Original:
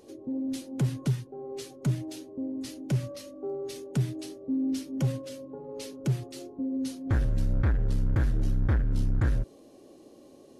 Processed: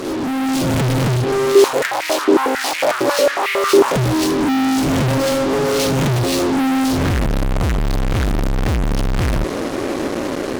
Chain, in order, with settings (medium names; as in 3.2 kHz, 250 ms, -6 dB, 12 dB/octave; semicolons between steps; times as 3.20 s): reverse spectral sustain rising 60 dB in 0.46 s; low-pass 4 kHz 6 dB/octave; fuzz box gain 53 dB, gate -54 dBFS; level rider gain up to 5 dB; 1.55–3.96 s: step-sequenced high-pass 11 Hz 360–2200 Hz; trim -7 dB